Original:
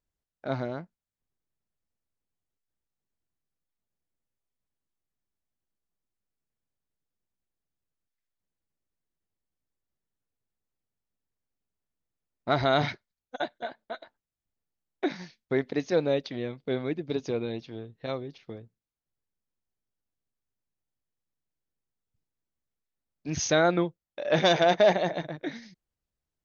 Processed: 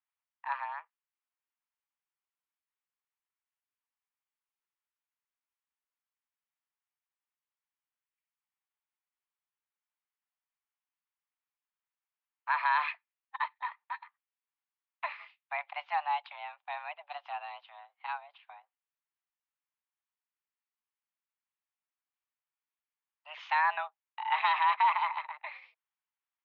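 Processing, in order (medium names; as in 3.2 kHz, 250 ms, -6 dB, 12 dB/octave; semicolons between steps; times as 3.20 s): mistuned SSB +300 Hz 590–2900 Hz; peak limiter -18 dBFS, peak gain reduction 4.5 dB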